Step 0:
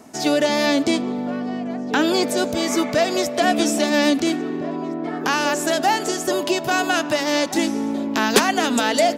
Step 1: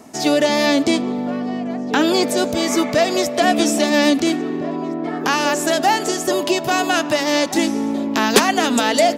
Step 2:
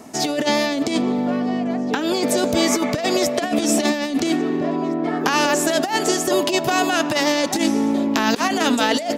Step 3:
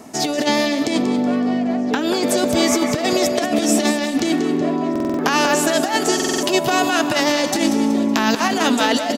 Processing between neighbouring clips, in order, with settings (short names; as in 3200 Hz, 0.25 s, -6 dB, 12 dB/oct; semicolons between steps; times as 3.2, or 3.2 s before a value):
notch 1500 Hz, Q 24; gain +2.5 dB
negative-ratio compressor -18 dBFS, ratio -0.5
on a send: feedback echo 0.187 s, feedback 41%, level -10 dB; on the sum: stuck buffer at 4.91/6.15, samples 2048, times 5; gain +1 dB